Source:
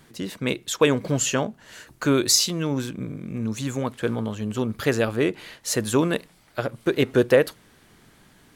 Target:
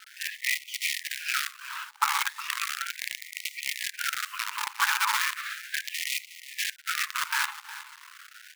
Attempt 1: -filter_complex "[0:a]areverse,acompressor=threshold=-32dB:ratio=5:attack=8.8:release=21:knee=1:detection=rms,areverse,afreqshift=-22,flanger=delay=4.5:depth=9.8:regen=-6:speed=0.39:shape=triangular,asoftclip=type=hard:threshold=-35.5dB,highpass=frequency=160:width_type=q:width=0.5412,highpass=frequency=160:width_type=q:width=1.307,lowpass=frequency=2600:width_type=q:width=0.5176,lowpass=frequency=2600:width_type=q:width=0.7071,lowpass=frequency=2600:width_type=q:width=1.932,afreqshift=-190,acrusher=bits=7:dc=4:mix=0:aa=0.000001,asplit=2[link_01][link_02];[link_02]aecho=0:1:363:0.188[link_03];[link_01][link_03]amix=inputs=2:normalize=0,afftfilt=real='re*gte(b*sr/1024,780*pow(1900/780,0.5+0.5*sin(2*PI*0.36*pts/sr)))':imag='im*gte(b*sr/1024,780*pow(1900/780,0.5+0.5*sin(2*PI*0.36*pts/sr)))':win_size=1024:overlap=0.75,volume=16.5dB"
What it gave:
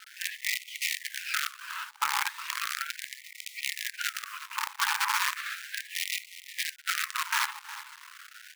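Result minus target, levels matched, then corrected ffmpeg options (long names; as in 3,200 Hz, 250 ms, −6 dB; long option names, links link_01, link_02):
hard clipping: distortion +25 dB
-filter_complex "[0:a]areverse,acompressor=threshold=-32dB:ratio=5:attack=8.8:release=21:knee=1:detection=rms,areverse,afreqshift=-22,flanger=delay=4.5:depth=9.8:regen=-6:speed=0.39:shape=triangular,asoftclip=type=hard:threshold=-25dB,highpass=frequency=160:width_type=q:width=0.5412,highpass=frequency=160:width_type=q:width=1.307,lowpass=frequency=2600:width_type=q:width=0.5176,lowpass=frequency=2600:width_type=q:width=0.7071,lowpass=frequency=2600:width_type=q:width=1.932,afreqshift=-190,acrusher=bits=7:dc=4:mix=0:aa=0.000001,asplit=2[link_01][link_02];[link_02]aecho=0:1:363:0.188[link_03];[link_01][link_03]amix=inputs=2:normalize=0,afftfilt=real='re*gte(b*sr/1024,780*pow(1900/780,0.5+0.5*sin(2*PI*0.36*pts/sr)))':imag='im*gte(b*sr/1024,780*pow(1900/780,0.5+0.5*sin(2*PI*0.36*pts/sr)))':win_size=1024:overlap=0.75,volume=16.5dB"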